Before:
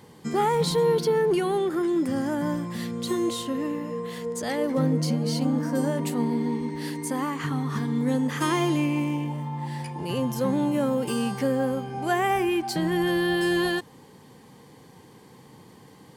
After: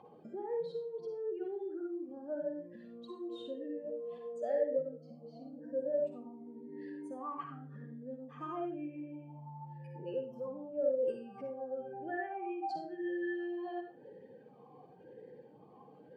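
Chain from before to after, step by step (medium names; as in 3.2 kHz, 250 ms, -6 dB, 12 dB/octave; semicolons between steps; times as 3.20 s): spectral contrast enhancement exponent 1.9; compression 6:1, threshold -37 dBFS, peak gain reduction 16.5 dB; reverberation RT60 0.45 s, pre-delay 42 ms, DRR 2 dB; talking filter a-e 0.95 Hz; trim +11 dB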